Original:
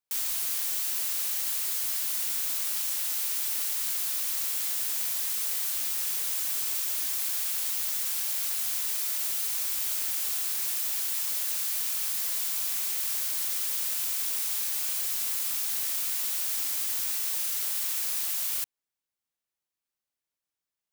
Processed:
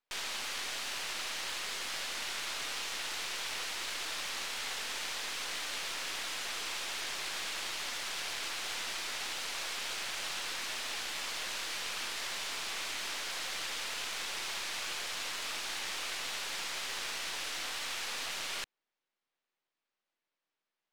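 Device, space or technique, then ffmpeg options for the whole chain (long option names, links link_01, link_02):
crystal radio: -af "highpass=250,lowpass=3400,aeval=exprs='if(lt(val(0),0),0.447*val(0),val(0))':channel_layout=same,volume=8.5dB"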